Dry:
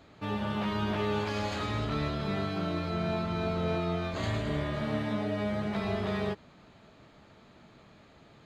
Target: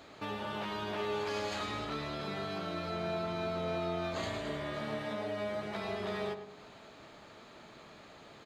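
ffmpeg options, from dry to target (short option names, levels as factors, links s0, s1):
-filter_complex "[0:a]acompressor=threshold=0.00708:ratio=2,bass=f=250:g=-10,treble=f=4000:g=3,asplit=2[s0][s1];[s1]adelay=103,lowpass=f=2200:p=1,volume=0.355,asplit=2[s2][s3];[s3]adelay=103,lowpass=f=2200:p=1,volume=0.49,asplit=2[s4][s5];[s5]adelay=103,lowpass=f=2200:p=1,volume=0.49,asplit=2[s6][s7];[s7]adelay=103,lowpass=f=2200:p=1,volume=0.49,asplit=2[s8][s9];[s9]adelay=103,lowpass=f=2200:p=1,volume=0.49,asplit=2[s10][s11];[s11]adelay=103,lowpass=f=2200:p=1,volume=0.49[s12];[s0][s2][s4][s6][s8][s10][s12]amix=inputs=7:normalize=0,volume=1.68"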